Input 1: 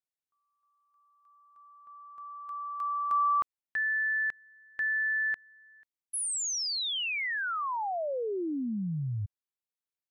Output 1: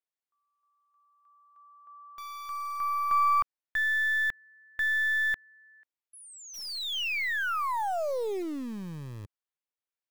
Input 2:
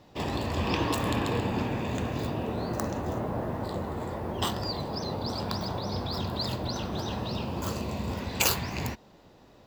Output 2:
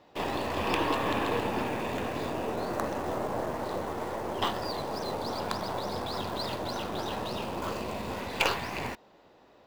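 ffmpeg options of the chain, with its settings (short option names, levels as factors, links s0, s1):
-filter_complex "[0:a]acrossover=split=4500[s0][s1];[s1]acompressor=threshold=0.00708:ratio=4:attack=1:release=60[s2];[s0][s2]amix=inputs=2:normalize=0,bass=f=250:g=-12,treble=f=4000:g=-8,asplit=2[s3][s4];[s4]acrusher=bits=4:dc=4:mix=0:aa=0.000001,volume=0.631[s5];[s3][s5]amix=inputs=2:normalize=0"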